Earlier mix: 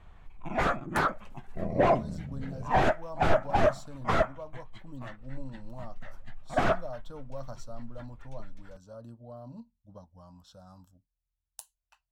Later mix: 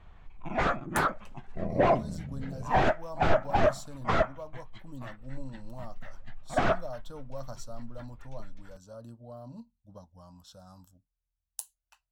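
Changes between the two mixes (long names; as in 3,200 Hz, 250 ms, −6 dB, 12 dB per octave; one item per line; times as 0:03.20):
background: add high-frequency loss of the air 110 metres
master: add high-shelf EQ 5,100 Hz +9 dB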